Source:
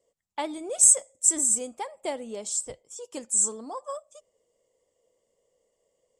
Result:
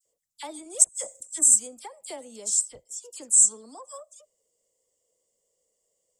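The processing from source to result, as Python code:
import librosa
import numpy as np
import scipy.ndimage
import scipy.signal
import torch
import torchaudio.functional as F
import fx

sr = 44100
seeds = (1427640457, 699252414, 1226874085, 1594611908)

y = fx.bass_treble(x, sr, bass_db=1, treble_db=15)
y = fx.over_compress(y, sr, threshold_db=-30.0, ratio=-1.0, at=(0.82, 1.41), fade=0.02)
y = fx.dispersion(y, sr, late='lows', ms=55.0, hz=2100.0)
y = y * librosa.db_to_amplitude(-8.0)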